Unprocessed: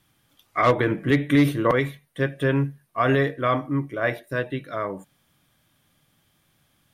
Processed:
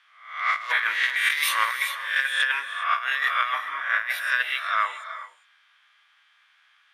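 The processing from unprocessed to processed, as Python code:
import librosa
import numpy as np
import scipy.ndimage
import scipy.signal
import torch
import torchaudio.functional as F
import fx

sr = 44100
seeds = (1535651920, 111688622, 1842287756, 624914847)

y = fx.spec_swells(x, sr, rise_s=0.61)
y = scipy.signal.sosfilt(scipy.signal.butter(4, 1300.0, 'highpass', fs=sr, output='sos'), y)
y = fx.env_lowpass(y, sr, base_hz=2300.0, full_db=-26.5)
y = fx.over_compress(y, sr, threshold_db=-31.0, ratio=-0.5)
y = fx.rev_gated(y, sr, seeds[0], gate_ms=430, shape='rising', drr_db=10.5)
y = F.gain(torch.from_numpy(y), 8.0).numpy()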